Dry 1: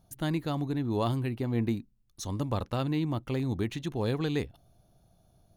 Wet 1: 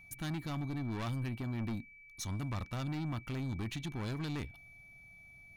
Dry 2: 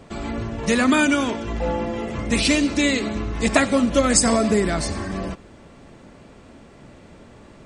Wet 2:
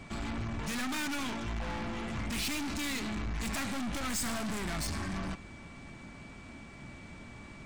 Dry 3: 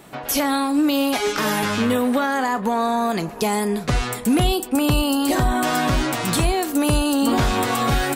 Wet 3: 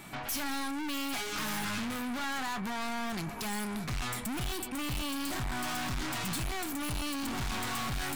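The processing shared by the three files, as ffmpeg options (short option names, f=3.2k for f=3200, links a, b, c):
-af "aeval=exprs='(tanh(39.8*val(0)+0.3)-tanh(0.3))/39.8':c=same,aeval=exprs='val(0)+0.002*sin(2*PI*2300*n/s)':c=same,equalizer=f=480:w=1.5:g=-10.5"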